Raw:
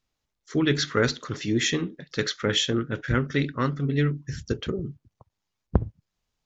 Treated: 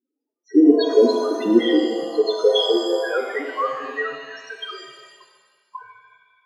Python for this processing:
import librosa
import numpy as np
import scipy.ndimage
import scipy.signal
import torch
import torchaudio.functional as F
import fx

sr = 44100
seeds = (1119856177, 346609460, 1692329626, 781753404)

y = fx.filter_sweep_highpass(x, sr, from_hz=300.0, to_hz=1100.0, start_s=1.67, end_s=4.81, q=1.8)
y = fx.spec_topn(y, sr, count=4)
y = fx.rev_shimmer(y, sr, seeds[0], rt60_s=1.5, semitones=7, shimmer_db=-8, drr_db=3.0)
y = F.gain(torch.from_numpy(y), 7.5).numpy()